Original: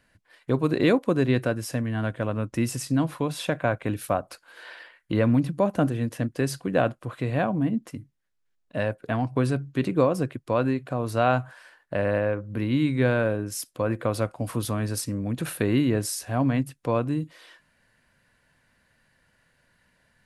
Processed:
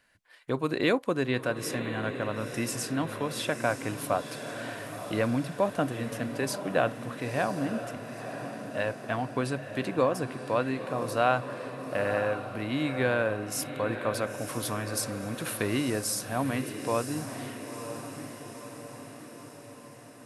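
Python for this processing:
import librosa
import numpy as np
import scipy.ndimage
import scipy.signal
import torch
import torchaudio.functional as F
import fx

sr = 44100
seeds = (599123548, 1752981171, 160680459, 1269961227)

p1 = fx.low_shelf(x, sr, hz=380.0, db=-10.5)
y = p1 + fx.echo_diffused(p1, sr, ms=967, feedback_pct=59, wet_db=-9, dry=0)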